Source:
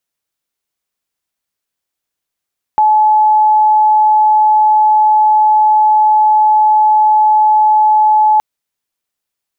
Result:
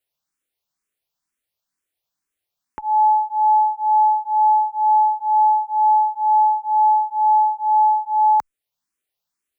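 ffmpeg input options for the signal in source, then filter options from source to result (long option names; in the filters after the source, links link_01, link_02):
-f lavfi -i "aevalsrc='0.501*sin(2*PI*857*t)':duration=5.62:sample_rate=44100"
-filter_complex "[0:a]alimiter=limit=-10.5dB:level=0:latency=1:release=429,asplit=2[link_01][link_02];[link_02]afreqshift=2.1[link_03];[link_01][link_03]amix=inputs=2:normalize=1"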